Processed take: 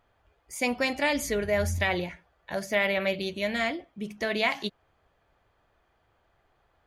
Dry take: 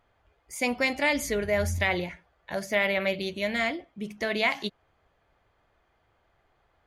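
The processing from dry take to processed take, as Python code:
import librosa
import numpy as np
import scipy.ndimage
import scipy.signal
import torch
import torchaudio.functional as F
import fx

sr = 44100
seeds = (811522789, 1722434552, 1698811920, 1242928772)

y = fx.notch(x, sr, hz=2100.0, q=26.0)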